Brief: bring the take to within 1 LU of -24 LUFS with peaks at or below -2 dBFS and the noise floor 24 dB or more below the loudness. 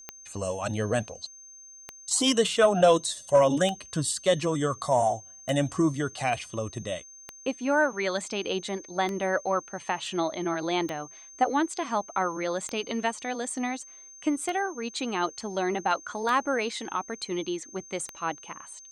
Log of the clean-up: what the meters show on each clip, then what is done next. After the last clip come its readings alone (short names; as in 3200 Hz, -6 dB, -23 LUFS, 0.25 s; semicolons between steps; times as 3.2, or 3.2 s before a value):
clicks 11; steady tone 6300 Hz; tone level -46 dBFS; loudness -28.0 LUFS; peak -9.5 dBFS; loudness target -24.0 LUFS
-> de-click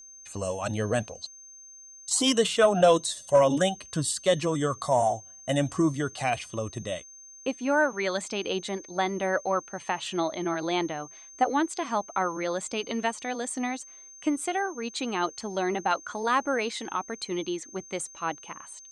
clicks 0; steady tone 6300 Hz; tone level -46 dBFS
-> notch 6300 Hz, Q 30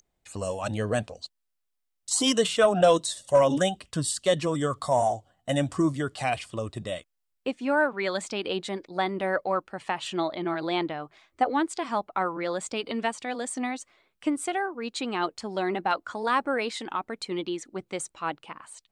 steady tone none; loudness -28.0 LUFS; peak -9.5 dBFS; loudness target -24.0 LUFS
-> gain +4 dB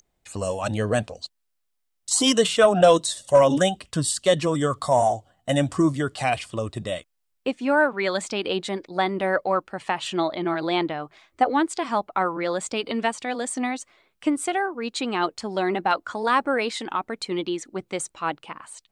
loudness -24.0 LUFS; peak -5.5 dBFS; noise floor -75 dBFS